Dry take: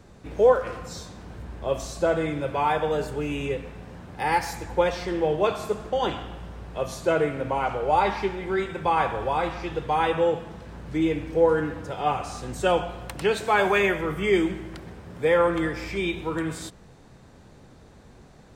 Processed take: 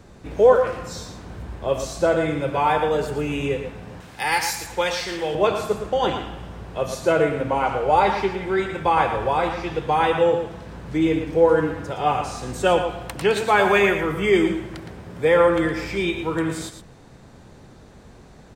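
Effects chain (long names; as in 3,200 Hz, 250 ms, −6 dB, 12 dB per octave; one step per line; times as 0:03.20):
0:04.00–0:05.35: tilt shelving filter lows −8 dB, about 1,400 Hz
single-tap delay 114 ms −9 dB
level +3.5 dB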